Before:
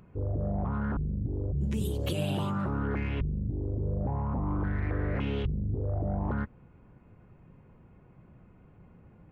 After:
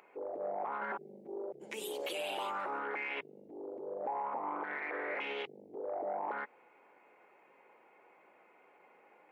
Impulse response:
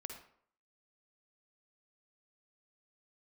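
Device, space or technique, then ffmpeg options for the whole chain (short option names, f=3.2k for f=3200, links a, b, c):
laptop speaker: -filter_complex "[0:a]asettb=1/sr,asplit=3[a][b][c];[a]atrim=end=0.814[d];[b]atrim=start=0.81:end=1.52,asetpts=PTS-STARTPTS,afade=t=in:d=0.004:c=qsin,afade=t=out:st=0.706:d=0.004:c=qsin,aecho=1:1:5.2:0.84,atrim=end_sample=31311[e];[c]atrim=start=1.516[f];[d][e]acrossfade=d=0.004:c1=hsin:c2=qsin[g];[g][f]acrossfade=d=0.004:c1=qsin:c2=hsin,highpass=f=420:w=0.5412,highpass=f=420:w=1.3066,equalizer=f=840:t=o:w=0.28:g=7,equalizer=f=2.2k:t=o:w=0.5:g=10,alimiter=level_in=6dB:limit=-24dB:level=0:latency=1:release=62,volume=-6dB,volume=1dB"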